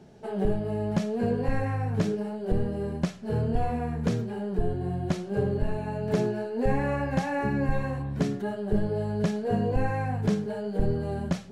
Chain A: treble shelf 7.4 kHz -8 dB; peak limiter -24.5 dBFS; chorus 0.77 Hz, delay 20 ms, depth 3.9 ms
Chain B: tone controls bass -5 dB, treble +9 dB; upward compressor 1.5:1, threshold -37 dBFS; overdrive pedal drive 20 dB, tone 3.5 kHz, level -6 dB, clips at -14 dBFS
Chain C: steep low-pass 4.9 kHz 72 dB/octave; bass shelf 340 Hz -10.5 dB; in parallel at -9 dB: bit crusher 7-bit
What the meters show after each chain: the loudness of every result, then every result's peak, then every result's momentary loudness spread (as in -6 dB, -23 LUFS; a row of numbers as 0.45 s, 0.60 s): -36.0 LUFS, -25.0 LUFS, -32.0 LUFS; -24.5 dBFS, -14.5 dBFS, -15.5 dBFS; 3 LU, 4 LU, 5 LU